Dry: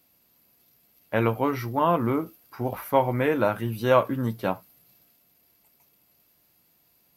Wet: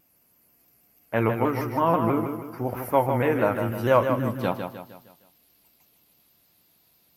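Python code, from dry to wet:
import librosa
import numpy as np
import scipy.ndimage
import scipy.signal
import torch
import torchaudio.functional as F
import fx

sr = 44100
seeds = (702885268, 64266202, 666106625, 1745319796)

y = fx.peak_eq(x, sr, hz=3800.0, db=fx.steps((0.0, -10.0), (4.41, 5.0)), octaves=0.51)
y = fx.echo_feedback(y, sr, ms=154, feedback_pct=44, wet_db=-7.0)
y = fx.vibrato_shape(y, sr, shape='saw_down', rate_hz=6.2, depth_cents=100.0)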